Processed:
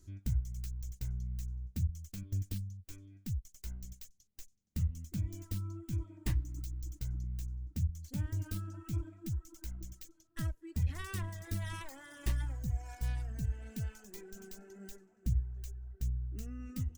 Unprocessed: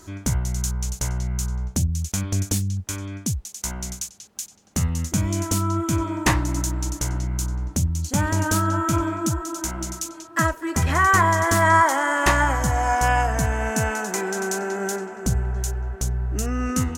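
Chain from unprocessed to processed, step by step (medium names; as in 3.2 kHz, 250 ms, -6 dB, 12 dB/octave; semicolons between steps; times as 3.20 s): tracing distortion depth 0.35 ms; amplifier tone stack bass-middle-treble 10-0-1; reverb removal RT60 1.9 s; trim +1 dB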